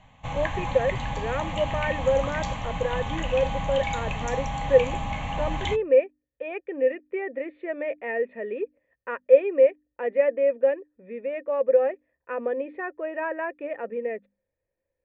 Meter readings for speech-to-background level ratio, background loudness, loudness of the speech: 4.5 dB, -31.0 LUFS, -26.5 LUFS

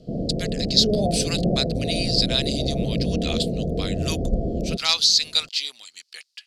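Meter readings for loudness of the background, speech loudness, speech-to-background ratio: -25.5 LUFS, -23.0 LUFS, 2.5 dB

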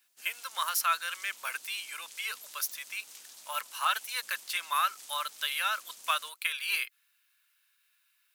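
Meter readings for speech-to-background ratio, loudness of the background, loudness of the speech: 15.5 dB, -48.0 LUFS, -32.5 LUFS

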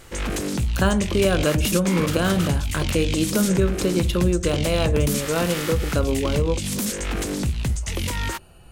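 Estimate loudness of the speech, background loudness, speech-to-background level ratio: -23.5 LUFS, -26.0 LUFS, 2.5 dB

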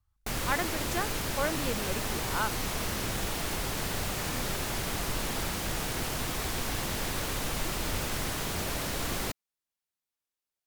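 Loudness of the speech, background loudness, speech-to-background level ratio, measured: -35.0 LUFS, -32.0 LUFS, -3.0 dB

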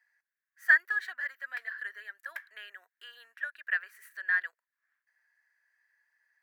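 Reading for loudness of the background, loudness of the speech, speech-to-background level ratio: -47.5 LUFS, -30.0 LUFS, 17.5 dB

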